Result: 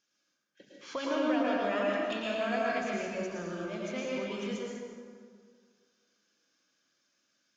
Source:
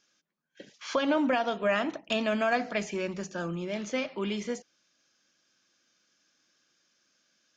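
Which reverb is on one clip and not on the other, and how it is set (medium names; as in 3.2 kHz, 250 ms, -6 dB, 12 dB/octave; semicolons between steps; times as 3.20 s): plate-style reverb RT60 2 s, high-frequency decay 0.6×, pre-delay 95 ms, DRR -4.5 dB; trim -9 dB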